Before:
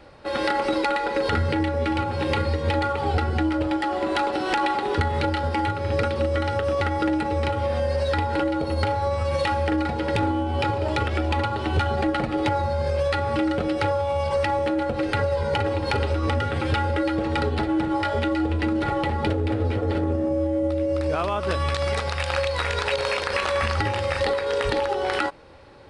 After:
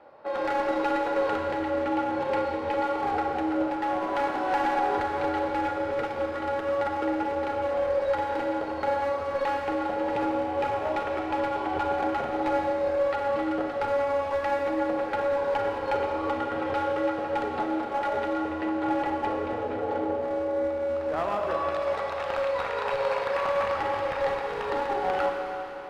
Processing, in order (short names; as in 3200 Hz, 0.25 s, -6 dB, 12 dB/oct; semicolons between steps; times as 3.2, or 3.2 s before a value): band-pass 770 Hz, Q 1.3; one-sided clip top -25.5 dBFS; Schroeder reverb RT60 3.6 s, combs from 28 ms, DRR 1 dB